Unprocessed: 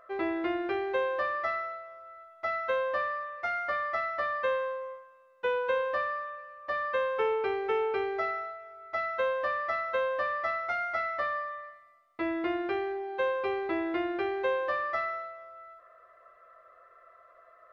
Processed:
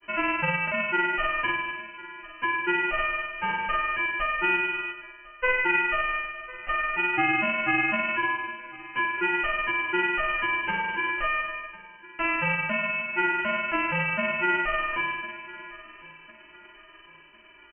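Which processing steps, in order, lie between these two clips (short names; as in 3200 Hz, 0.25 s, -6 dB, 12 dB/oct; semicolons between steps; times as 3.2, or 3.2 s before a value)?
spectral whitening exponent 0.1; grains 0.1 s, grains 20/s, spray 37 ms, pitch spread up and down by 0 st; on a send: feedback echo 1.052 s, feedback 44%, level -21 dB; on the sum: inverted band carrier 3000 Hz; gain +7 dB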